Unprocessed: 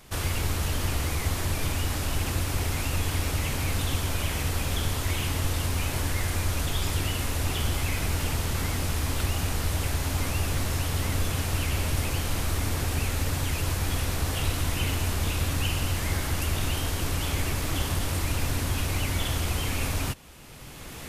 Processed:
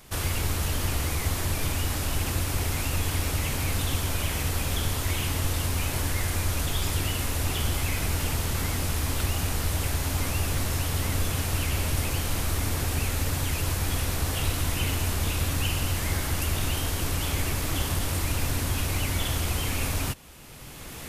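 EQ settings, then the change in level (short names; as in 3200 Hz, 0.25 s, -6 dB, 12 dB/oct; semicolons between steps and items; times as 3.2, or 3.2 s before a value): high shelf 9200 Hz +4.5 dB; 0.0 dB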